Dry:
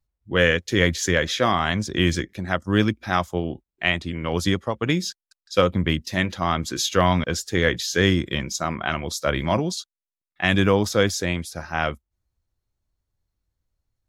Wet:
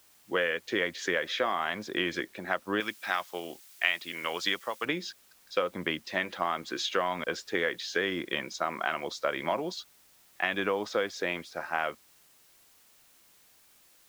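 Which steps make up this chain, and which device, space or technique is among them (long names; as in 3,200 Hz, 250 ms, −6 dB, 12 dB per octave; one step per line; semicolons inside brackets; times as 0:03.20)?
baby monitor (band-pass filter 410–3,000 Hz; downward compressor, threshold −25 dBFS, peak gain reduction 10.5 dB; white noise bed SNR 28 dB)
0:02.80–0:04.85: tilt shelving filter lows −7.5 dB, about 1,300 Hz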